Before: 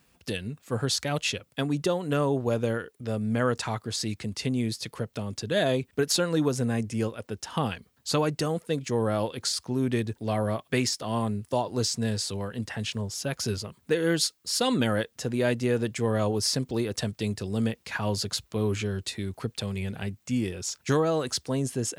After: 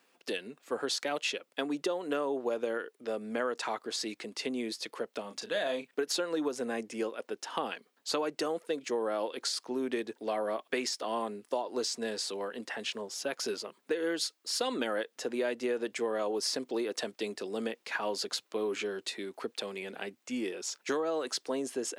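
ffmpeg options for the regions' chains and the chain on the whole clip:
ffmpeg -i in.wav -filter_complex "[0:a]asettb=1/sr,asplit=3[link_01][link_02][link_03];[link_01]atrim=end=5.214[link_04];[link_02]atrim=start=5.21:end=5.93,asetpts=PTS-STARTPTS,afade=type=in:duration=0.004:curve=qsin,afade=type=out:start_time=0.716:duration=0.004:curve=qsin,equalizer=frequency=370:width=2.1:gain=-10.5,asplit=2[link_05][link_06];[link_06]adelay=35,volume=-9dB[link_07];[link_05][link_07]amix=inputs=2:normalize=0,atrim=end_sample=31752[link_08];[link_03]atrim=start=5.926[link_09];[link_04][link_08]acrossfade=duration=0.004:curve1=hsin:curve2=qsin[link_10];[link_10][link_09]acrossfade=duration=0.004:curve1=qsin:curve2=hsin,highpass=frequency=300:width=0.5412,highpass=frequency=300:width=1.3066,highshelf=frequency=5800:gain=-8.5,acompressor=threshold=-28dB:ratio=6" out.wav

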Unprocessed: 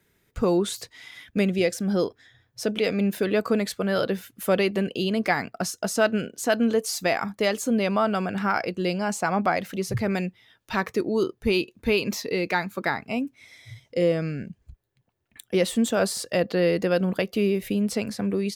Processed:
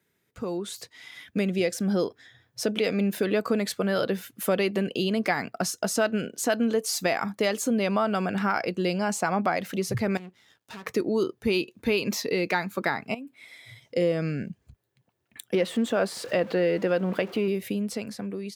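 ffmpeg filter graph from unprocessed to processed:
ffmpeg -i in.wav -filter_complex "[0:a]asettb=1/sr,asplit=3[link_01][link_02][link_03];[link_01]atrim=end=10.174[link_04];[link_02]atrim=start=10.17:end=10.86,asetpts=PTS-STARTPTS,afade=type=in:duration=0.004:curve=qsin,afade=type=out:start_time=0.686:duration=0.004:curve=qsin,acompressor=threshold=-34dB:ratio=3:attack=3.2:release=140:knee=1:detection=peak,aeval=exprs='max(val(0),0)':channel_layout=same,aeval=exprs='(tanh(25.1*val(0)+0.25)-tanh(0.25))/25.1':channel_layout=same[link_05];[link_03]atrim=start=10.856[link_06];[link_04][link_05]acrossfade=duration=0.004:curve1=hsin:curve2=qsin[link_07];[link_07][link_06]acrossfade=duration=0.004:curve1=qsin:curve2=hsin,asettb=1/sr,asplit=3[link_08][link_09][link_10];[link_08]atrim=end=13.144[link_11];[link_09]atrim=start=13.14:end=13.82,asetpts=PTS-STARTPTS,afade=type=in:duration=0.004:curve=qsin,afade=type=out:start_time=0.676:duration=0.004:curve=qsin,highpass=frequency=270:poles=1,equalizer=frequency=5900:width_type=o:width=0.25:gain=-14.5,acompressor=threshold=-38dB:ratio=8:attack=3.2:release=140:knee=1:detection=peak[link_12];[link_10]atrim=start=13.816[link_13];[link_11][link_12]acrossfade=duration=0.004:curve1=hsin:curve2=qsin[link_14];[link_14][link_13]acrossfade=duration=0.004:curve1=qsin:curve2=hsin,asettb=1/sr,asplit=3[link_15][link_16][link_17];[link_15]atrim=end=15.554[link_18];[link_16]atrim=start=15.55:end=17.48,asetpts=PTS-STARTPTS,afade=type=in:duration=0.004:curve=qsin,afade=type=out:start_time=1.926:duration=0.004:curve=qsin,aeval=exprs='val(0)+0.5*0.0141*sgn(val(0))':channel_layout=same,bass=frequency=250:gain=-4,treble=frequency=4000:gain=-12,bandreject=frequency=159.5:width_type=h:width=4,bandreject=frequency=319:width_type=h:width=4[link_19];[link_17]atrim=start=17.476[link_20];[link_18][link_19]acrossfade=duration=0.004:curve1=hsin:curve2=qsin[link_21];[link_21][link_20]acrossfade=duration=0.004:curve1=qsin:curve2=hsin,acompressor=threshold=-26dB:ratio=2,highpass=110,dynaudnorm=framelen=320:gausssize=7:maxgain=8.5dB,volume=-6dB" out.wav

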